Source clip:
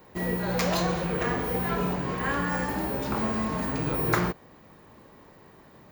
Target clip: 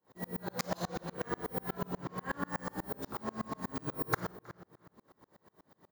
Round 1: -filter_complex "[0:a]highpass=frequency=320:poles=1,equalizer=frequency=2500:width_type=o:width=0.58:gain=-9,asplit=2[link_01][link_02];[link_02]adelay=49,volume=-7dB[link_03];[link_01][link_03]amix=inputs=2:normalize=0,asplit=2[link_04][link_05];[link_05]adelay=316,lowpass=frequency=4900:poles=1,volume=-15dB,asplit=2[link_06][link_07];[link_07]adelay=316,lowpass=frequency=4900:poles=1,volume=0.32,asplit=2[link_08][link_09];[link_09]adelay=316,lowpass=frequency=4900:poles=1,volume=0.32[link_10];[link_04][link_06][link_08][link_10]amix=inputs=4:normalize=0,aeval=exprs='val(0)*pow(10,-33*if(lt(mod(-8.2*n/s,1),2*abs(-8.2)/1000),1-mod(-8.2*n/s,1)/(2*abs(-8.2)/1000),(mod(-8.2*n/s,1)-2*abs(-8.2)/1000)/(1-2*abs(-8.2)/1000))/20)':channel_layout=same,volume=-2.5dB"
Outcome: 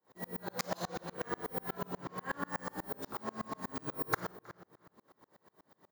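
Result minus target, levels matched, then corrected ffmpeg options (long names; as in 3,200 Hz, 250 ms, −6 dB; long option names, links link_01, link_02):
125 Hz band −3.5 dB
-filter_complex "[0:a]highpass=frequency=130:poles=1,equalizer=frequency=2500:width_type=o:width=0.58:gain=-9,asplit=2[link_01][link_02];[link_02]adelay=49,volume=-7dB[link_03];[link_01][link_03]amix=inputs=2:normalize=0,asplit=2[link_04][link_05];[link_05]adelay=316,lowpass=frequency=4900:poles=1,volume=-15dB,asplit=2[link_06][link_07];[link_07]adelay=316,lowpass=frequency=4900:poles=1,volume=0.32,asplit=2[link_08][link_09];[link_09]adelay=316,lowpass=frequency=4900:poles=1,volume=0.32[link_10];[link_04][link_06][link_08][link_10]amix=inputs=4:normalize=0,aeval=exprs='val(0)*pow(10,-33*if(lt(mod(-8.2*n/s,1),2*abs(-8.2)/1000),1-mod(-8.2*n/s,1)/(2*abs(-8.2)/1000),(mod(-8.2*n/s,1)-2*abs(-8.2)/1000)/(1-2*abs(-8.2)/1000))/20)':channel_layout=same,volume=-2.5dB"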